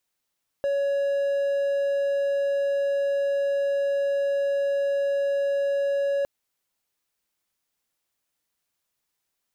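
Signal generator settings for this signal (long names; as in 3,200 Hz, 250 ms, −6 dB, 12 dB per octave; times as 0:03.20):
tone triangle 560 Hz −19.5 dBFS 5.61 s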